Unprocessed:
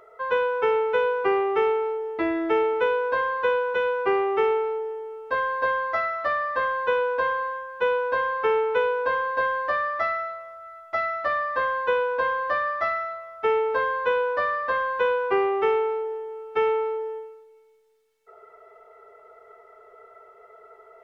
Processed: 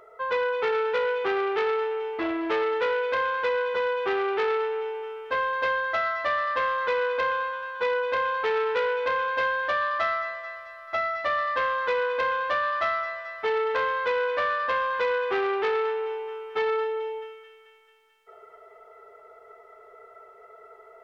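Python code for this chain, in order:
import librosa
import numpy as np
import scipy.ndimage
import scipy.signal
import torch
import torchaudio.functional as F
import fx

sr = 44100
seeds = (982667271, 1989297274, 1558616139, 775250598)

y = fx.echo_wet_highpass(x, sr, ms=219, feedback_pct=63, hz=1800.0, wet_db=-6)
y = fx.transformer_sat(y, sr, knee_hz=1500.0)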